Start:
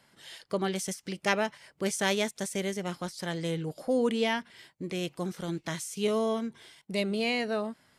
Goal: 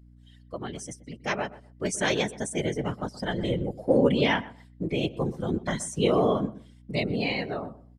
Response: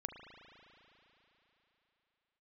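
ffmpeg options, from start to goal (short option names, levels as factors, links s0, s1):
-filter_complex "[0:a]afftdn=nr=19:nf=-39,equalizer=f=7700:t=o:w=0.64:g=3.5,dynaudnorm=f=680:g=5:m=3.98,afftfilt=real='hypot(re,im)*cos(2*PI*random(0))':imag='hypot(re,im)*sin(2*PI*random(1))':win_size=512:overlap=0.75,aeval=exprs='val(0)+0.00282*(sin(2*PI*60*n/s)+sin(2*PI*2*60*n/s)/2+sin(2*PI*3*60*n/s)/3+sin(2*PI*4*60*n/s)/4+sin(2*PI*5*60*n/s)/5)':c=same,asplit=2[s0][s1];[s1]adelay=125,lowpass=f=1400:p=1,volume=0.158,asplit=2[s2][s3];[s3]adelay=125,lowpass=f=1400:p=1,volume=0.21[s4];[s2][s4]amix=inputs=2:normalize=0[s5];[s0][s5]amix=inputs=2:normalize=0"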